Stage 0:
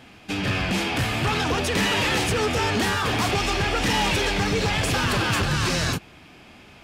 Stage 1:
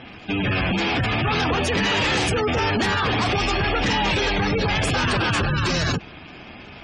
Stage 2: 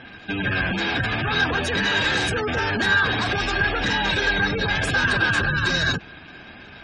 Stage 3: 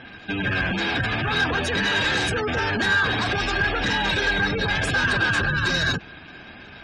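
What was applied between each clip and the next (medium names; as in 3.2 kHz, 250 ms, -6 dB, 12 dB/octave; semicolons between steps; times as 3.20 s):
waveshaping leveller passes 3; spectral gate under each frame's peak -20 dB strong; trim -2.5 dB
small resonant body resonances 1.6/3.8 kHz, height 17 dB, ringing for 40 ms; trim -3.5 dB
saturation -12 dBFS, distortion -24 dB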